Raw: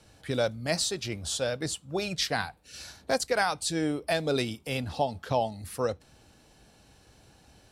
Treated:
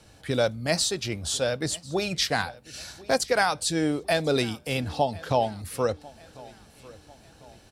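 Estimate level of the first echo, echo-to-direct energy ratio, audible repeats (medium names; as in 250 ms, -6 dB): -22.0 dB, -21.0 dB, 2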